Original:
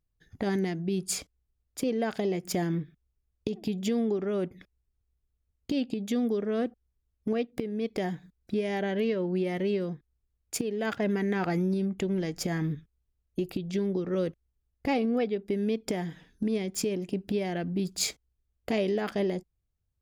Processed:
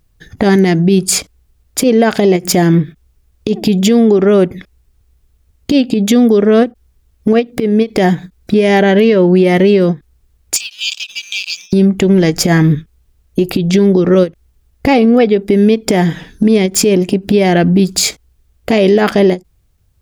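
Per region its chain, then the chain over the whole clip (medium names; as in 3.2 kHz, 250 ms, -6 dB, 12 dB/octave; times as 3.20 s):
10.56–11.73 s: brick-wall FIR band-pass 2.3–8.4 kHz + treble shelf 5.6 kHz +9 dB + waveshaping leveller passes 1
whole clip: compression 2:1, threshold -31 dBFS; loudness maximiser +24.5 dB; endings held to a fixed fall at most 360 dB/s; trim -1 dB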